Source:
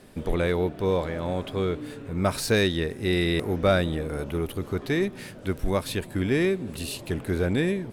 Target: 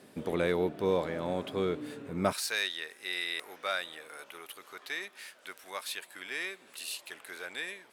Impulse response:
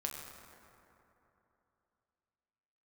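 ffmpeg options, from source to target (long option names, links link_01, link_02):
-af "asetnsamples=nb_out_samples=441:pad=0,asendcmd='2.33 highpass f 1200',highpass=170,volume=-3.5dB"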